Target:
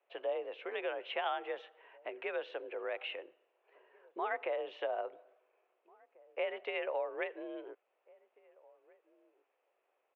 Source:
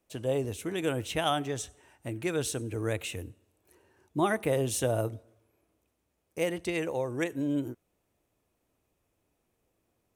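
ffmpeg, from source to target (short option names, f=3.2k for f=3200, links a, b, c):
-filter_complex "[0:a]acompressor=threshold=-31dB:ratio=6,asplit=2[a][b];[b]adelay=1691,volume=-25dB,highshelf=f=4k:g=-38[c];[a][c]amix=inputs=2:normalize=0,highpass=f=420:t=q:w=0.5412,highpass=f=420:t=q:w=1.307,lowpass=f=2.9k:t=q:w=0.5176,lowpass=f=2.9k:t=q:w=0.7071,lowpass=f=2.9k:t=q:w=1.932,afreqshift=50,volume=1dB"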